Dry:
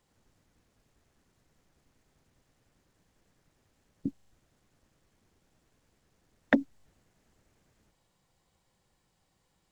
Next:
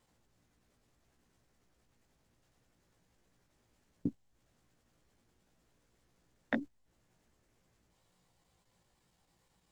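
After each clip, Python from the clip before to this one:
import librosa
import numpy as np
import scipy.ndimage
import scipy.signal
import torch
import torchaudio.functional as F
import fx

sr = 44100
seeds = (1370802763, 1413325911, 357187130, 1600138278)

y = fx.vibrato(x, sr, rate_hz=8.5, depth_cents=73.0)
y = fx.level_steps(y, sr, step_db=15)
y = fx.doubler(y, sr, ms=17.0, db=-4.0)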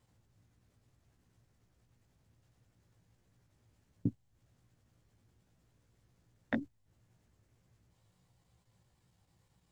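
y = fx.peak_eq(x, sr, hz=100.0, db=13.5, octaves=1.3)
y = y * 10.0 ** (-2.5 / 20.0)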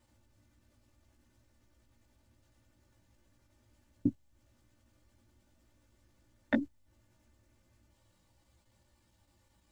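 y = x + 0.95 * np.pad(x, (int(3.4 * sr / 1000.0), 0))[:len(x)]
y = y * 10.0 ** (1.0 / 20.0)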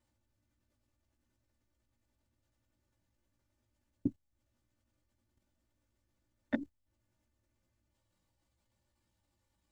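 y = fx.level_steps(x, sr, step_db=13)
y = y * 10.0 ** (-2.0 / 20.0)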